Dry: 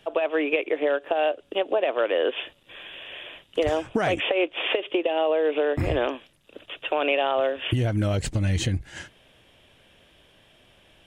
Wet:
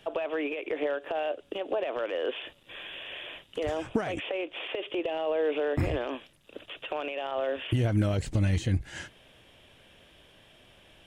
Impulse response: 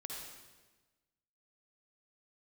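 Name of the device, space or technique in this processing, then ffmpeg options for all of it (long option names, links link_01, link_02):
de-esser from a sidechain: -filter_complex "[0:a]asplit=2[link_01][link_02];[link_02]highpass=frequency=4200:poles=1,apad=whole_len=488107[link_03];[link_01][link_03]sidechaincompress=threshold=-39dB:ratio=6:attack=0.6:release=49"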